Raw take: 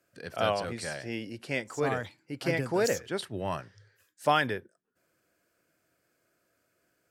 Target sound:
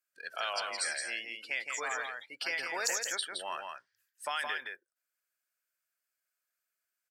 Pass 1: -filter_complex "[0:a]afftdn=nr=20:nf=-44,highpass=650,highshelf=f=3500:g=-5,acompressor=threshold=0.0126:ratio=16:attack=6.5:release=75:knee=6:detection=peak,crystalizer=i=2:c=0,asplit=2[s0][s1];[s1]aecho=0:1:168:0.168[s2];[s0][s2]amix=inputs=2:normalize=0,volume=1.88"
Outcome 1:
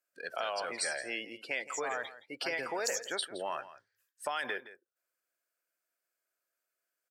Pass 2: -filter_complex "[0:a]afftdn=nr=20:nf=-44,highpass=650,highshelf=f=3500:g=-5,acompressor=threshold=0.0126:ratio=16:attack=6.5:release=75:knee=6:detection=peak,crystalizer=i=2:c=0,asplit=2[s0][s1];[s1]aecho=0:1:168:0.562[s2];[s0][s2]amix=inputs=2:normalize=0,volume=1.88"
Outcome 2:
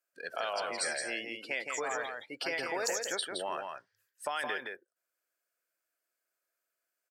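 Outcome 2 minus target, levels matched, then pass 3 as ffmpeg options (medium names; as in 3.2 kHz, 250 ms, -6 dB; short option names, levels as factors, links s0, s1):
500 Hz band +6.5 dB
-filter_complex "[0:a]afftdn=nr=20:nf=-44,highpass=1300,highshelf=f=3500:g=-5,acompressor=threshold=0.0126:ratio=16:attack=6.5:release=75:knee=6:detection=peak,crystalizer=i=2:c=0,asplit=2[s0][s1];[s1]aecho=0:1:168:0.562[s2];[s0][s2]amix=inputs=2:normalize=0,volume=1.88"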